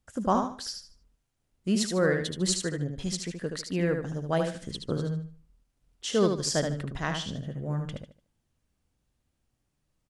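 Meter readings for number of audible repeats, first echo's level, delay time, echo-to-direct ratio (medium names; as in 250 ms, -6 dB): 3, -5.5 dB, 75 ms, -5.0 dB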